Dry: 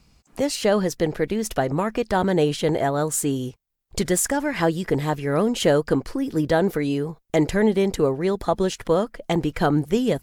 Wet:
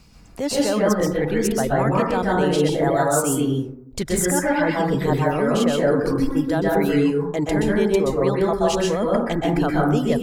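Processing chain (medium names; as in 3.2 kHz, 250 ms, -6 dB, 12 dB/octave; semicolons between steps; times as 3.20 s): reverb removal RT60 1.8 s; reverse; compression 6:1, threshold -28 dBFS, peak gain reduction 13.5 dB; reverse; plate-style reverb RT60 0.72 s, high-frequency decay 0.3×, pre-delay 115 ms, DRR -4 dB; trim +6.5 dB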